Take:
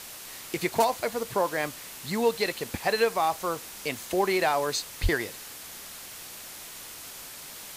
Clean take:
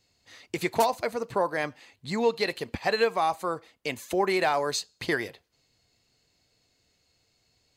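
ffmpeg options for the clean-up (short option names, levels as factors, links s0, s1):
-filter_complex "[0:a]asplit=3[s0][s1][s2];[s0]afade=t=out:st=5.02:d=0.02[s3];[s1]highpass=f=140:w=0.5412,highpass=f=140:w=1.3066,afade=t=in:st=5.02:d=0.02,afade=t=out:st=5.14:d=0.02[s4];[s2]afade=t=in:st=5.14:d=0.02[s5];[s3][s4][s5]amix=inputs=3:normalize=0,afwtdn=0.0089"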